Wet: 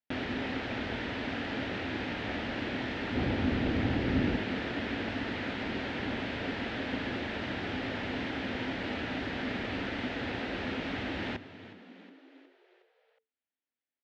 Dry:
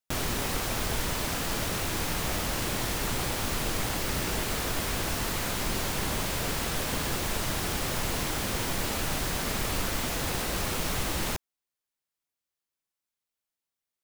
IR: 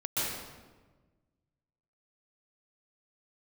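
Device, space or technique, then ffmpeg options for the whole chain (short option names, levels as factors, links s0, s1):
frequency-shifting delay pedal into a guitar cabinet: -filter_complex "[0:a]asettb=1/sr,asplit=3[s0][s1][s2];[s0]atrim=end=3.154[s3];[s1]atrim=start=3.15:end=4.36,asetpts=PTS-STARTPTS,afade=t=in:d=0.004:c=qsin,afade=t=out:st=1.206:d=0.004:c=qsin,lowshelf=f=330:g=11.5[s4];[s2]atrim=start=4.356[s5];[s3][s4]acrossfade=d=0.004:c1=hsin:c2=qsin[s6];[s6][s5]acrossfade=d=0.004:c1=qsin:c2=hsin,asplit=6[s7][s8][s9][s10][s11][s12];[s8]adelay=364,afreqshift=88,volume=0.158[s13];[s9]adelay=728,afreqshift=176,volume=0.0871[s14];[s10]adelay=1092,afreqshift=264,volume=0.0479[s15];[s11]adelay=1456,afreqshift=352,volume=0.0263[s16];[s12]adelay=1820,afreqshift=440,volume=0.0145[s17];[s7][s13][s14][s15][s16][s17]amix=inputs=6:normalize=0,highpass=93,equalizer=f=150:t=q:w=4:g=-9,equalizer=f=260:t=q:w=4:g=9,equalizer=f=1100:t=q:w=4:g=-9,equalizer=f=1800:t=q:w=4:g=4,lowpass=f=3400:w=0.5412,lowpass=f=3400:w=1.3066,volume=0.708"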